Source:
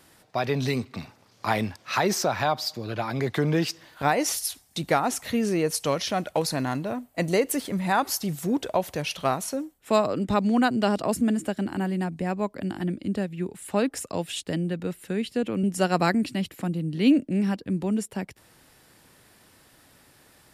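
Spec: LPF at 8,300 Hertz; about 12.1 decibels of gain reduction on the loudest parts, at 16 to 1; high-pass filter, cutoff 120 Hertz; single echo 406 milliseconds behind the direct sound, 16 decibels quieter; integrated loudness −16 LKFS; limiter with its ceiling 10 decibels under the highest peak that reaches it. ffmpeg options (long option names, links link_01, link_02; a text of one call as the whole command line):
ffmpeg -i in.wav -af "highpass=120,lowpass=8300,acompressor=threshold=-26dB:ratio=16,alimiter=limit=-24dB:level=0:latency=1,aecho=1:1:406:0.158,volume=18dB" out.wav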